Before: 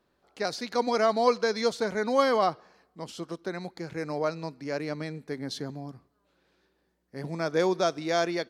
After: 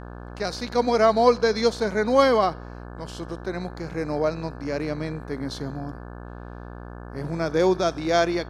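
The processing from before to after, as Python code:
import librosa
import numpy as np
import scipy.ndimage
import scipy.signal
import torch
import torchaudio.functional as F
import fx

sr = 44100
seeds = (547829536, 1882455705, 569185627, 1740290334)

y = fx.dmg_buzz(x, sr, base_hz=60.0, harmonics=29, level_db=-43.0, tilt_db=-4, odd_only=False)
y = fx.hpss(y, sr, part='harmonic', gain_db=6)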